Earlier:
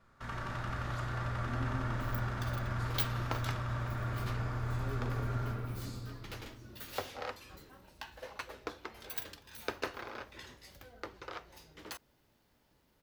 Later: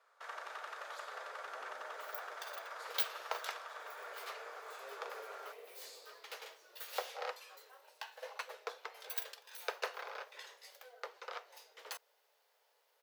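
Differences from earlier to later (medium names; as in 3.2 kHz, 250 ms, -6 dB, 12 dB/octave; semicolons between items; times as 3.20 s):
first sound: send off; master: add Chebyshev high-pass 450 Hz, order 5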